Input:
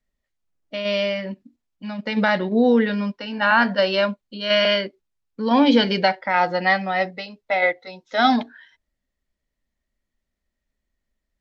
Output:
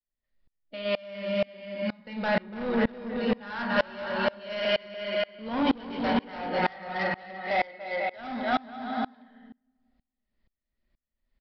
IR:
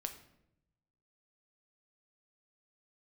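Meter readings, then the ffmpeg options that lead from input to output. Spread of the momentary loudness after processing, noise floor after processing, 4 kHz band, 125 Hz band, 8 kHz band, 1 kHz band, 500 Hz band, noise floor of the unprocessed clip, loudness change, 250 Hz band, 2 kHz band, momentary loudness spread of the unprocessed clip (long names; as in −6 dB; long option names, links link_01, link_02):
6 LU, below −85 dBFS, −11.0 dB, −7.5 dB, can't be measured, −8.5 dB, −7.5 dB, −81 dBFS, −9.5 dB, −9.0 dB, −9.5 dB, 17 LU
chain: -filter_complex "[0:a]acrossover=split=2900[link_01][link_02];[link_02]acompressor=threshold=-37dB:ratio=4:attack=1:release=60[link_03];[link_01][link_03]amix=inputs=2:normalize=0,aecho=1:1:290|493|635.1|734.6|804.2:0.631|0.398|0.251|0.158|0.1,asplit=2[link_04][link_05];[link_05]acompressor=threshold=-29dB:ratio=6,volume=-1.5dB[link_06];[link_04][link_06]amix=inputs=2:normalize=0[link_07];[1:a]atrim=start_sample=2205,asetrate=34839,aresample=44100[link_08];[link_07][link_08]afir=irnorm=-1:irlink=0,aresample=11025,asoftclip=type=tanh:threshold=-16dB,aresample=44100,aeval=exprs='val(0)*pow(10,-28*if(lt(mod(-2.1*n/s,1),2*abs(-2.1)/1000),1-mod(-2.1*n/s,1)/(2*abs(-2.1)/1000),(mod(-2.1*n/s,1)-2*abs(-2.1)/1000)/(1-2*abs(-2.1)/1000))/20)':channel_layout=same"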